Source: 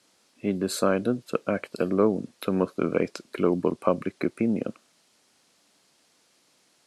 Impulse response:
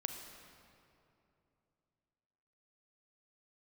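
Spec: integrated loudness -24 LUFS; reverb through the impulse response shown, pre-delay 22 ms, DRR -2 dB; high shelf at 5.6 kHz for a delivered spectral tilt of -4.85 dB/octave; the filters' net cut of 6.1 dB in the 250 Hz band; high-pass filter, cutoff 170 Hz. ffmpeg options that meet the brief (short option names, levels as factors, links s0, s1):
-filter_complex "[0:a]highpass=170,equalizer=f=250:t=o:g=-7,highshelf=f=5600:g=3,asplit=2[s0][s1];[1:a]atrim=start_sample=2205,adelay=22[s2];[s1][s2]afir=irnorm=-1:irlink=0,volume=1.26[s3];[s0][s3]amix=inputs=2:normalize=0,volume=1.19"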